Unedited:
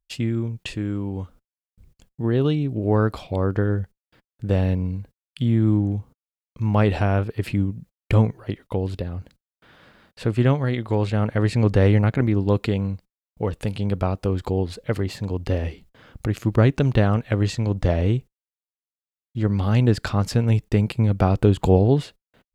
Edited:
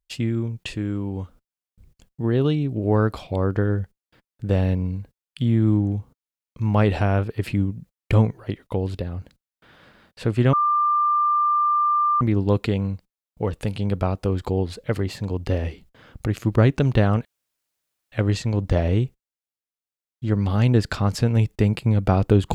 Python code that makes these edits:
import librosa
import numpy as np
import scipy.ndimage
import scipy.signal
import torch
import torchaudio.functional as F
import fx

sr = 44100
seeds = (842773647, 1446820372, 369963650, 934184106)

y = fx.edit(x, sr, fx.bleep(start_s=10.53, length_s=1.68, hz=1190.0, db=-16.5),
    fx.insert_room_tone(at_s=17.25, length_s=0.87), tone=tone)